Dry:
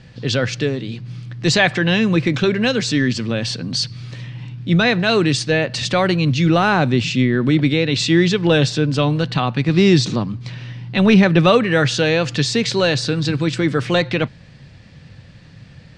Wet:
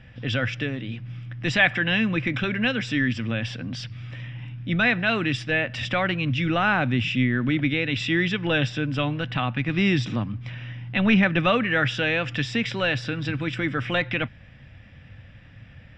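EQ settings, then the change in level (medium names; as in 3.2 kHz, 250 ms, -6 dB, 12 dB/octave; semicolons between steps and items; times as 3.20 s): fifteen-band graphic EQ 160 Hz -10 dB, 400 Hz -11 dB, 1 kHz -6 dB; dynamic bell 560 Hz, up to -4 dB, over -32 dBFS, Q 0.89; Savitzky-Golay filter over 25 samples; 0.0 dB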